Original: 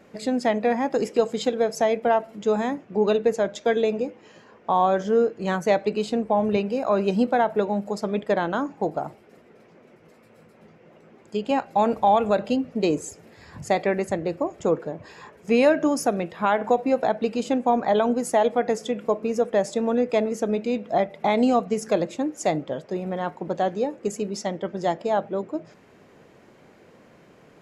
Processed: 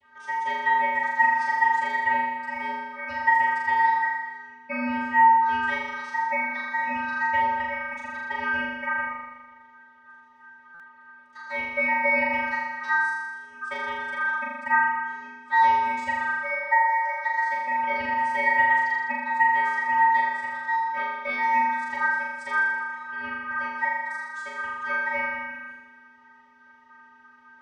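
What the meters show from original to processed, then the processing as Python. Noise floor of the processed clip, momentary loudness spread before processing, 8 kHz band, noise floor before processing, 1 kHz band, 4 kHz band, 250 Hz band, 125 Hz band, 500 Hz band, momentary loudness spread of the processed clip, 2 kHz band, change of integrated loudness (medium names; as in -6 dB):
-53 dBFS, 9 LU, under -15 dB, -54 dBFS, +4.0 dB, -6.0 dB, -14.0 dB, under -20 dB, -17.0 dB, 12 LU, +12.5 dB, -0.5 dB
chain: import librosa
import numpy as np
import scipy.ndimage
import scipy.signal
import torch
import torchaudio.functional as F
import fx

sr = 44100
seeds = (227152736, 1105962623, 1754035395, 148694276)

p1 = fx.vocoder(x, sr, bands=32, carrier='square', carrier_hz=165.0)
p2 = fx.spec_repair(p1, sr, seeds[0], start_s=16.34, length_s=0.86, low_hz=840.0, high_hz=3300.0, source='before')
p3 = p2 * np.sin(2.0 * np.pi * 1400.0 * np.arange(len(p2)) / sr)
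p4 = p3 + fx.room_flutter(p3, sr, wall_m=7.0, rt60_s=1.3, dry=0)
p5 = fx.buffer_glitch(p4, sr, at_s=(10.74,), block=256, repeats=9)
y = p5 * 10.0 ** (-2.5 / 20.0)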